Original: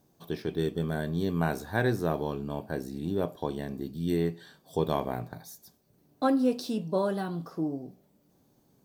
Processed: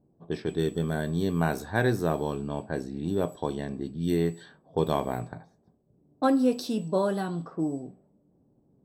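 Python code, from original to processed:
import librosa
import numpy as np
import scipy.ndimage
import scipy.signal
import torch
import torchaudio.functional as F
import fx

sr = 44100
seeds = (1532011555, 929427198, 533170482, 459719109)

y = x + 10.0 ** (-57.0 / 20.0) * np.sin(2.0 * np.pi * 7900.0 * np.arange(len(x)) / sr)
y = fx.env_lowpass(y, sr, base_hz=490.0, full_db=-27.0)
y = y * 10.0 ** (2.0 / 20.0)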